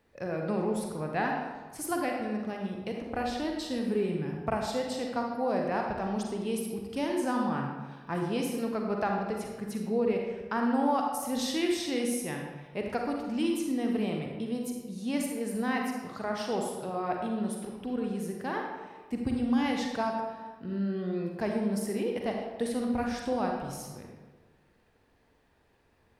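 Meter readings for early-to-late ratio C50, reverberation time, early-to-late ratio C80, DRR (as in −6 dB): 2.0 dB, 1.3 s, 4.5 dB, 0.5 dB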